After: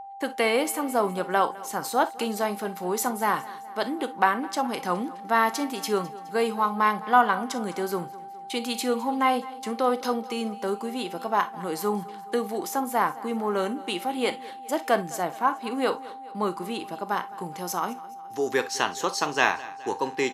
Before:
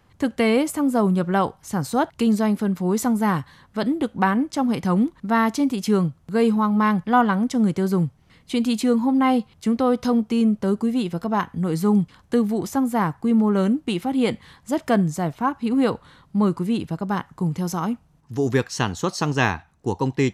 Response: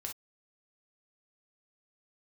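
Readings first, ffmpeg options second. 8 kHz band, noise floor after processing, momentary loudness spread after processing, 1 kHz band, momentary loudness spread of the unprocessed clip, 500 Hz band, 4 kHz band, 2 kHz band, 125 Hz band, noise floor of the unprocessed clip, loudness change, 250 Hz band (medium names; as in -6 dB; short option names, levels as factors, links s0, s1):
+1.0 dB, -41 dBFS, 9 LU, +0.5 dB, 7 LU, -3.0 dB, +0.5 dB, +0.5 dB, -16.5 dB, -58 dBFS, -5.0 dB, -12.0 dB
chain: -filter_complex "[0:a]agate=range=0.141:threshold=0.00631:ratio=16:detection=peak,highpass=470,aexciter=amount=1.7:drive=3.1:freq=11000,aeval=exprs='val(0)+0.0158*sin(2*PI*790*n/s)':c=same,aecho=1:1:209|418|627|836:0.106|0.0583|0.032|0.0176,asplit=2[s0][s1];[1:a]atrim=start_sample=2205[s2];[s1][s2]afir=irnorm=-1:irlink=0,volume=0.708[s3];[s0][s3]amix=inputs=2:normalize=0,volume=0.708"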